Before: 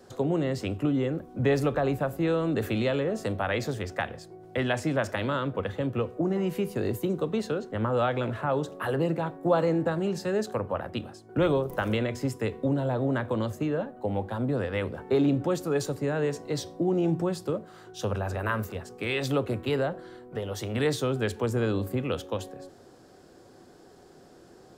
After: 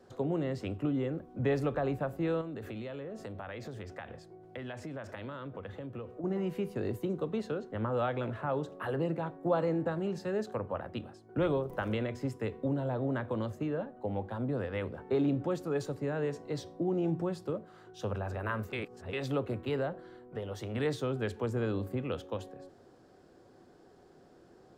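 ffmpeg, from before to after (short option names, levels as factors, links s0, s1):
-filter_complex "[0:a]asettb=1/sr,asplit=3[s0][s1][s2];[s0]atrim=end=2.414[s3];[s1]atrim=start=2.41:end=6.24,asetpts=PTS-STARTPTS,afade=t=in:d=0.004:c=qsin,afade=t=out:st=3.826:d=0.004:c=qsin,acompressor=threshold=0.0224:ratio=4:attack=3.2:release=140:knee=1:detection=peak[s4];[s2]atrim=start=6.236[s5];[s3][s4]acrossfade=d=0.004:c1=hsin:c2=qsin[s6];[s6][s5]acrossfade=d=0.004:c1=qsin:c2=hsin,asplit=3[s7][s8][s9];[s7]atrim=end=18.732[s10];[s8]atrim=start=18.728:end=19.132,asetpts=PTS-STARTPTS,areverse[s11];[s9]atrim=start=19.128[s12];[s10][s11]acrossfade=d=0.004:c1=hsin:c2=hsin[s13];[s13][s12]acrossfade=d=0.004:c1=hsin:c2=hsin,highshelf=f=4700:g=-10,volume=0.531"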